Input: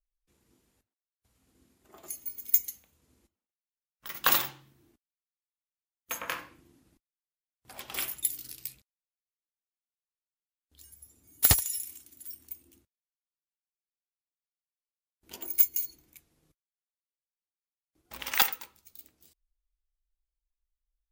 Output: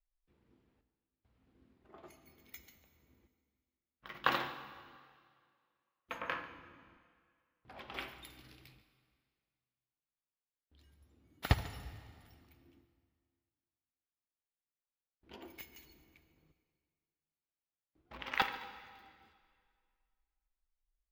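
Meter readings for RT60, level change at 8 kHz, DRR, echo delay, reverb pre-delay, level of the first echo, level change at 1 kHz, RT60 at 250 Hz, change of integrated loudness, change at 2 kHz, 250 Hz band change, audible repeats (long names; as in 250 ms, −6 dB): 2.1 s, −28.0 dB, 10.0 dB, 143 ms, 7 ms, −18.5 dB, −2.0 dB, 2.1 s, −12.0 dB, −4.0 dB, −1.0 dB, 1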